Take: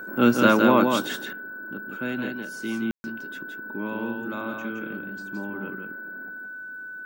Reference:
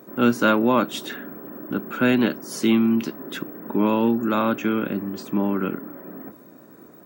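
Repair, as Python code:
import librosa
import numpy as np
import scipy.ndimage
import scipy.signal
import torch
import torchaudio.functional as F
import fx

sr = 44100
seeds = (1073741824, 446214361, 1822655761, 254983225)

y = fx.notch(x, sr, hz=1500.0, q=30.0)
y = fx.fix_ambience(y, sr, seeds[0], print_start_s=6.47, print_end_s=6.97, start_s=2.91, end_s=3.04)
y = fx.fix_echo_inverse(y, sr, delay_ms=168, level_db=-4.5)
y = fx.gain(y, sr, db=fx.steps((0.0, 0.0), (1.16, 12.0)))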